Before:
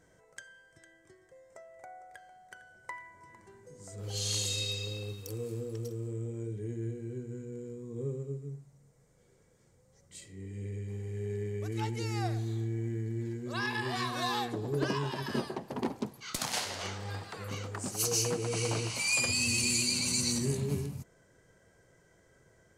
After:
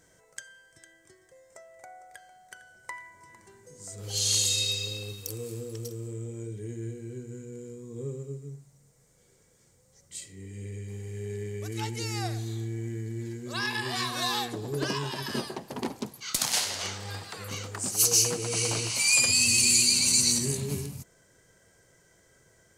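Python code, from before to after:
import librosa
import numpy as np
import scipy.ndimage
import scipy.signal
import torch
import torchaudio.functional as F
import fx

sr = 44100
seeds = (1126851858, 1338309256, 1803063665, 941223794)

y = fx.high_shelf(x, sr, hz=2800.0, db=10.5)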